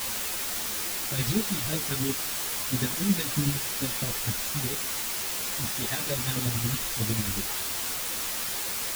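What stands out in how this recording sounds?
chopped level 11 Hz, depth 60%, duty 35%
phaser sweep stages 2, 3 Hz, lowest notch 480–1,100 Hz
a quantiser's noise floor 6 bits, dither triangular
a shimmering, thickened sound

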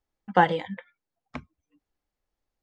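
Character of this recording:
background noise floor −87 dBFS
spectral slope −4.0 dB per octave

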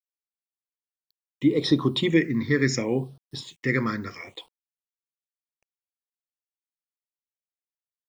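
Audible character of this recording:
a quantiser's noise floor 10 bits, dither none
phaser sweep stages 6, 0.7 Hz, lowest notch 750–2,100 Hz

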